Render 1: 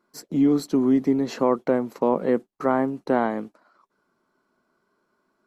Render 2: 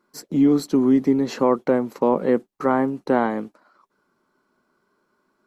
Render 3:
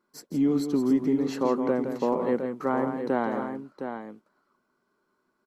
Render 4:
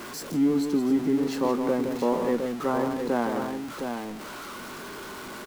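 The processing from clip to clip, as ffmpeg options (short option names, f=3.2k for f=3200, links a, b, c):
-af "bandreject=f=670:w=14,volume=2.5dB"
-af "aecho=1:1:167|712:0.398|0.398,volume=-7dB"
-filter_complex "[0:a]aeval=exprs='val(0)+0.5*0.0251*sgn(val(0))':c=same,asplit=2[a][b];[b]adelay=25,volume=-14dB[c];[a][c]amix=inputs=2:normalize=0,volume=-1dB"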